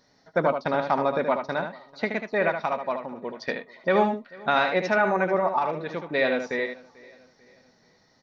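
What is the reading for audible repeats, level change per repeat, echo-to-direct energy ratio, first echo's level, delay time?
4, repeats not evenly spaced, −7.0 dB, −7.0 dB, 75 ms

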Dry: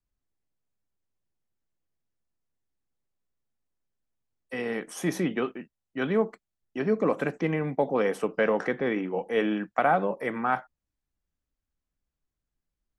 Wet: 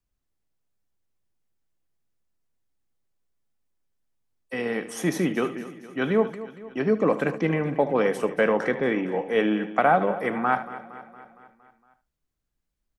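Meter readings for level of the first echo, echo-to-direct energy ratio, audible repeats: −15.0 dB, −11.0 dB, 7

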